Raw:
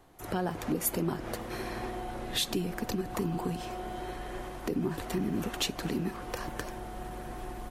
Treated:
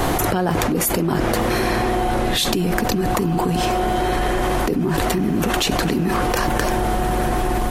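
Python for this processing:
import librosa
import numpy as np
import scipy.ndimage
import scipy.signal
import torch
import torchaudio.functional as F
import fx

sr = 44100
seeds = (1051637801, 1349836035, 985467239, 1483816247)

y = fx.env_flatten(x, sr, amount_pct=100)
y = y * 10.0 ** (7.0 / 20.0)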